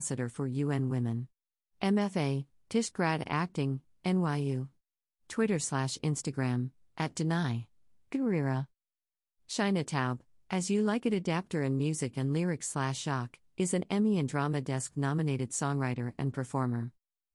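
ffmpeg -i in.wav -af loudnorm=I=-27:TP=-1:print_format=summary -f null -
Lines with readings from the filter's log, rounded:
Input Integrated:    -32.5 LUFS
Input True Peak:     -15.0 dBTP
Input LRA:             1.7 LU
Input Threshold:     -42.7 LUFS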